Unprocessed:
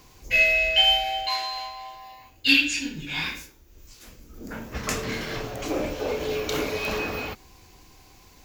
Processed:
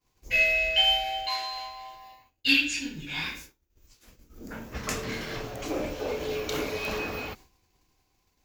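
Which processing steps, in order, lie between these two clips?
expander -41 dBFS; trim -3.5 dB

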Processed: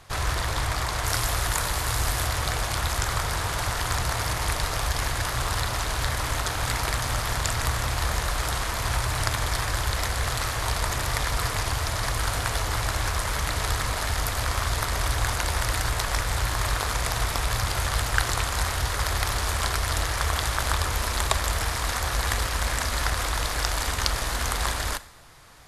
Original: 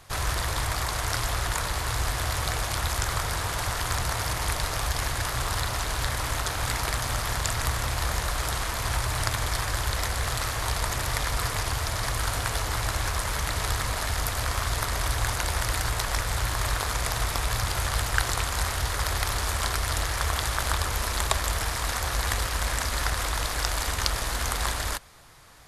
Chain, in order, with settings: treble shelf 8.5 kHz -6.5 dB, from 1.05 s +5.5 dB, from 2.27 s -2.5 dB; Schroeder reverb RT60 0.59 s, combs from 26 ms, DRR 15.5 dB; trim +1.5 dB

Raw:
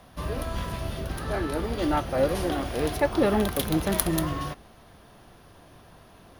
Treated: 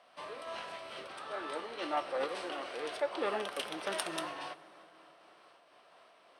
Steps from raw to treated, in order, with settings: high-pass 700 Hz 12 dB/octave; treble shelf 2.7 kHz +11 dB; formant shift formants -2 st; tape spacing loss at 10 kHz 24 dB; plate-style reverb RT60 3.7 s, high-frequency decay 0.5×, DRR 15 dB; random flutter of the level, depth 50%; trim -1.5 dB

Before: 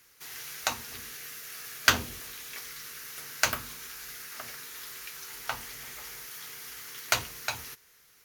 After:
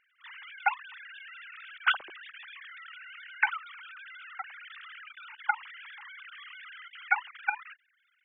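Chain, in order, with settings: formants replaced by sine waves; level held to a coarse grid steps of 13 dB; trim +5 dB

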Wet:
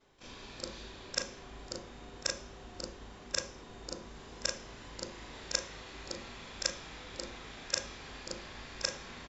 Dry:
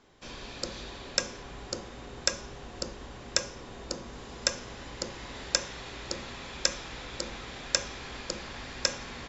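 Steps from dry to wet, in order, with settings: short-time spectra conjugated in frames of 75 ms; resampled via 32 kHz; trim -2.5 dB

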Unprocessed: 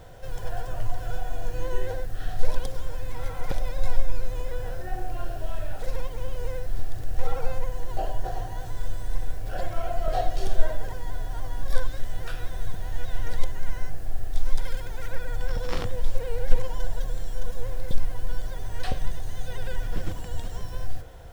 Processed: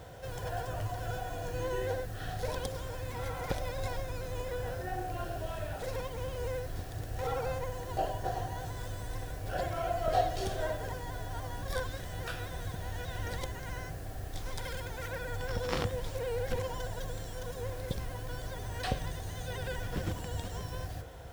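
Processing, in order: high-pass 58 Hz 12 dB/octave

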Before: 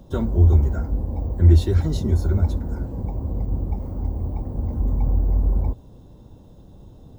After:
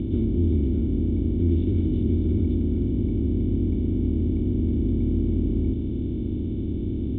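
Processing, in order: spectral levelling over time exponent 0.2; cascade formant filter i

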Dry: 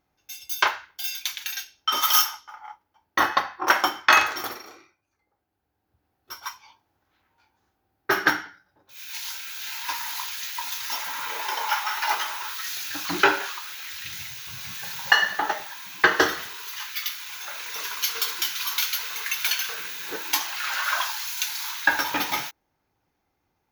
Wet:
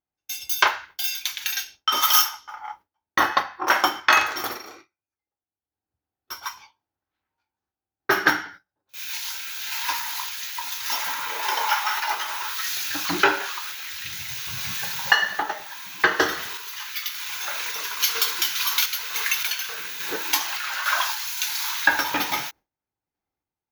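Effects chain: gate with hold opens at -37 dBFS; in parallel at +1.5 dB: compression, threshold -32 dBFS, peak gain reduction 19 dB; on the sum: random-step tremolo; trim +1 dB

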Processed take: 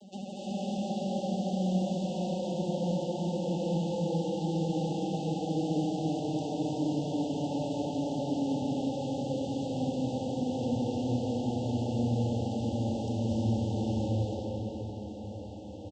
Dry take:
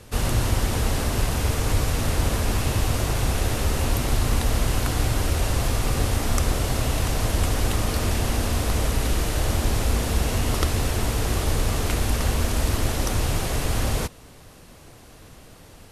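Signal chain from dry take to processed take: vocoder on a note that slides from G3, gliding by -12 st; comb 3.8 ms, depth 76%; compression 2:1, threshold -44 dBFS, peak gain reduction 11 dB; FFT band-reject 910–2700 Hz; vibrato 14 Hz 82 cents; echo that smears into a reverb 589 ms, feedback 47%, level -13 dB; reverberation RT60 4.6 s, pre-delay 200 ms, DRR -7.5 dB; Opus 128 kbps 48 kHz

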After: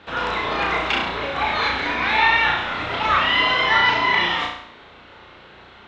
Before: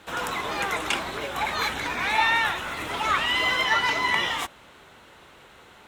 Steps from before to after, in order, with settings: low-pass 4.5 kHz 24 dB/octave; flutter echo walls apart 5.9 m, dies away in 0.63 s; trim +3 dB

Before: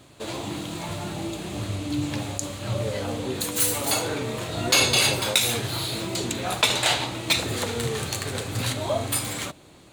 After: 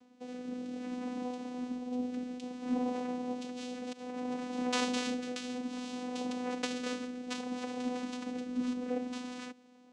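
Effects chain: 3.92–4.34 s: compressor with a negative ratio -30 dBFS, ratio -0.5; vocoder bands 4, saw 249 Hz; rotary cabinet horn 0.6 Hz; trim -7.5 dB

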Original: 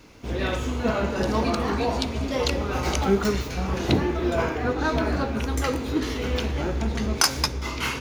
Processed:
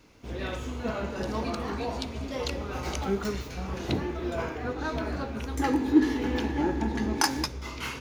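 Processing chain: 5.59–7.44 s: small resonant body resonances 300/850/1700 Hz, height 15 dB, ringing for 35 ms; trim -7.5 dB

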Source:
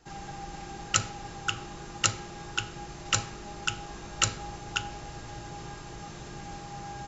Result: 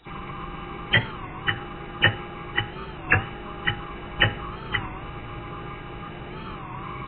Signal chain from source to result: knee-point frequency compression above 2.2 kHz 4:1; formant shift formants +5 st; warped record 33 1/3 rpm, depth 160 cents; trim +5 dB

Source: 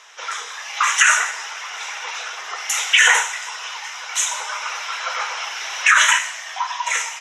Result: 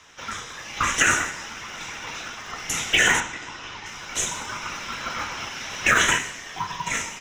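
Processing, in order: in parallel at -10.5 dB: sample-and-hold 39×; 3.20–3.86 s: on the sum: distance through air 86 m; trim -5.5 dB

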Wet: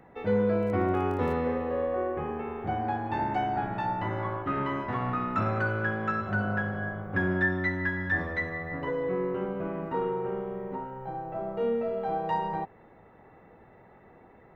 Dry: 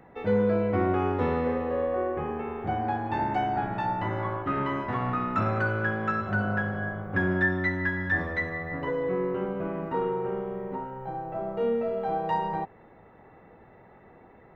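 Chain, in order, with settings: 0.57–1.32 s: crackle 18 per s -> 43 per s -37 dBFS; trim -1.5 dB

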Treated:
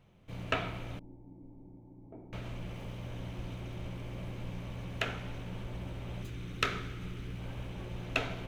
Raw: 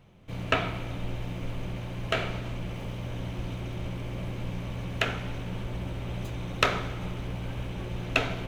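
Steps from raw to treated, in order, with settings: 0.99–2.33 s: cascade formant filter u; 6.22–7.39 s: high-order bell 740 Hz -9 dB 1.2 oct; trim -6.5 dB

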